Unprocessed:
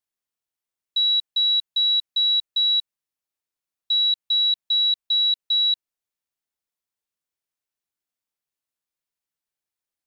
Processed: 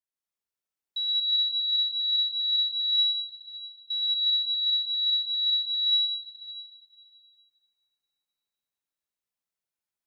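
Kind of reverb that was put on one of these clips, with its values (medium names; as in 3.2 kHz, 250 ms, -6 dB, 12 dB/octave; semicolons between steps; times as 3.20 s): plate-style reverb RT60 3.3 s, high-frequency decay 0.7×, pre-delay 110 ms, DRR -6 dB; trim -9.5 dB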